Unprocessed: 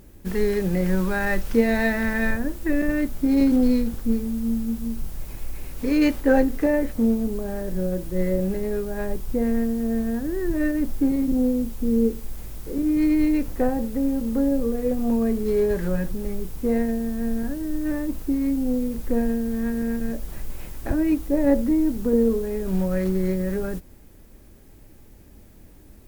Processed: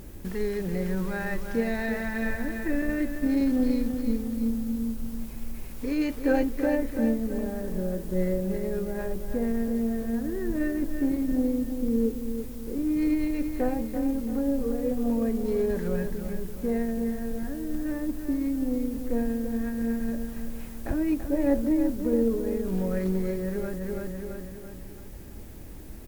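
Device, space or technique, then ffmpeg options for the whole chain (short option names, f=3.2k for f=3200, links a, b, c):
de-esser from a sidechain: -filter_complex "[0:a]aecho=1:1:335|670|1005|1340|1675:0.398|0.175|0.0771|0.0339|0.0149,asplit=2[a][b];[b]highpass=6k,apad=whole_len=1248066[c];[a][c]sidechaincompress=threshold=-50dB:ratio=8:attack=0.62:release=80,volume=5dB"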